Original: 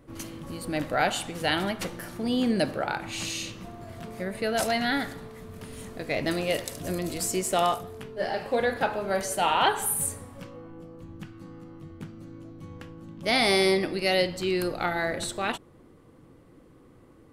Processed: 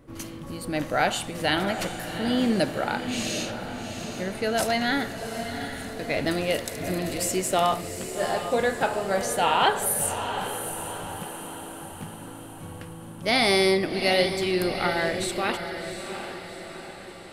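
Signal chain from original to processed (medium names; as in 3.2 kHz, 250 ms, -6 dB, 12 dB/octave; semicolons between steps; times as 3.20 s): 11.23–11.91 s: Chebyshev high-pass 210 Hz, order 2; on a send: echo that smears into a reverb 746 ms, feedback 53%, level -8.5 dB; on the sum: trim +1.5 dB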